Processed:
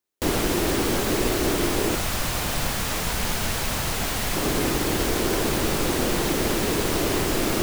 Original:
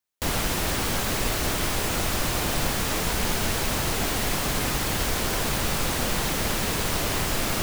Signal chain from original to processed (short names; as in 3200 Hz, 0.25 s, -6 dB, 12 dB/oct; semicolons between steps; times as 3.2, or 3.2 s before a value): bell 350 Hz +11.5 dB 1 oct, from 1.95 s -3.5 dB, from 4.36 s +10.5 dB